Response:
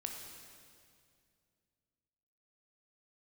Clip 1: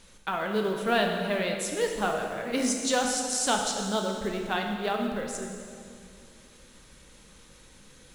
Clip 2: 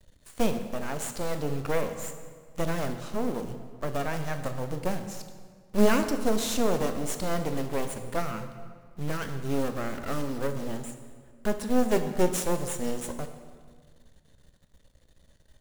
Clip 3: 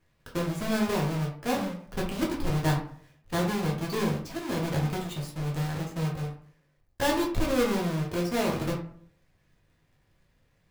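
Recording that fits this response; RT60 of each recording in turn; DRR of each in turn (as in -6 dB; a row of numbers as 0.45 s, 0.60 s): 1; 2.3 s, 1.7 s, 0.55 s; 2.0 dB, 7.0 dB, -2.0 dB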